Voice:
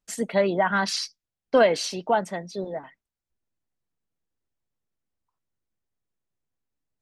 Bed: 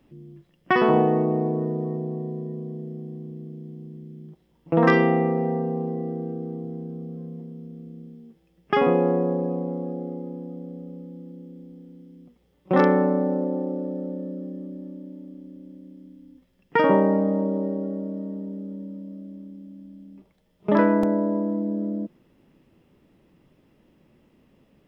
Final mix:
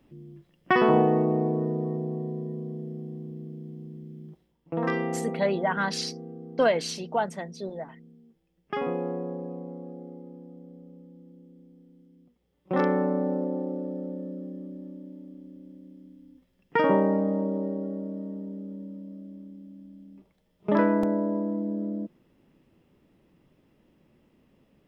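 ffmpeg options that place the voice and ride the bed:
-filter_complex "[0:a]adelay=5050,volume=-4dB[a];[1:a]volume=5dB,afade=t=out:st=4.35:d=0.21:silence=0.375837,afade=t=in:st=12.37:d=0.92:silence=0.473151[b];[a][b]amix=inputs=2:normalize=0"

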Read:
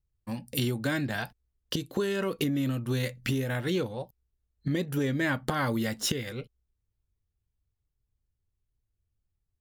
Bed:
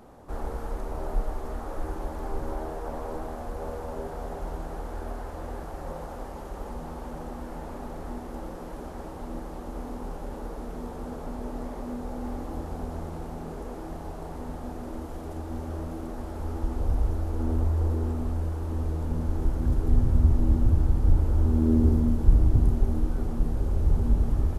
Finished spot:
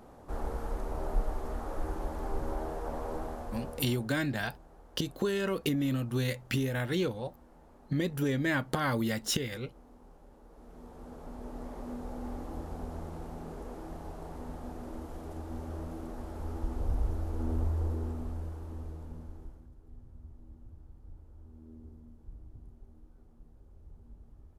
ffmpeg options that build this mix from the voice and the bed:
-filter_complex "[0:a]adelay=3250,volume=-1.5dB[a];[1:a]volume=12dB,afade=t=out:st=3.22:d=0.88:silence=0.133352,afade=t=in:st=10.46:d=1.45:silence=0.188365,afade=t=out:st=17.64:d=2.05:silence=0.0595662[b];[a][b]amix=inputs=2:normalize=0"

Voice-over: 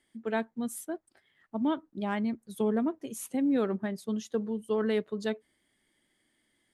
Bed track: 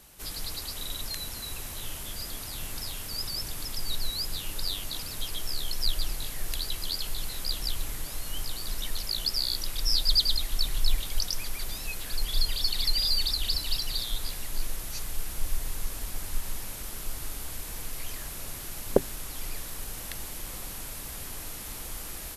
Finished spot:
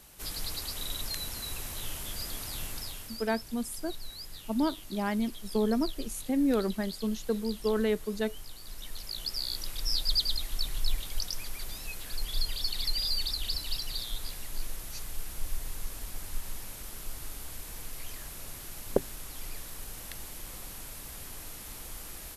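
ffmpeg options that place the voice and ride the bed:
-filter_complex "[0:a]adelay=2950,volume=0.5dB[a];[1:a]volume=6.5dB,afade=t=out:st=2.58:d=0.68:silence=0.281838,afade=t=in:st=8.62:d=0.99:silence=0.446684[b];[a][b]amix=inputs=2:normalize=0"

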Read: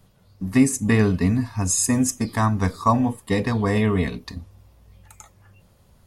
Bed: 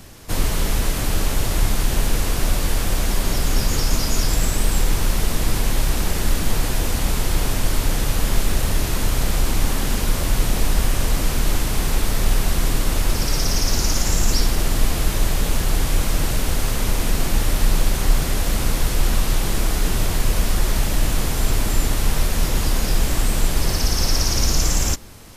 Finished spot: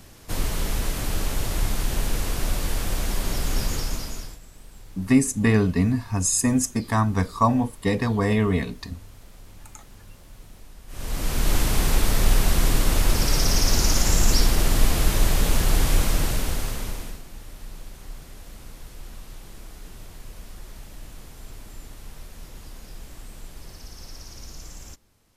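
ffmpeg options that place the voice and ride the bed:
-filter_complex "[0:a]adelay=4550,volume=-1dB[a];[1:a]volume=21.5dB,afade=t=out:st=3.65:d=0.74:silence=0.0794328,afade=t=in:st=10.87:d=0.73:silence=0.0446684,afade=t=out:st=15.93:d=1.29:silence=0.0841395[b];[a][b]amix=inputs=2:normalize=0"

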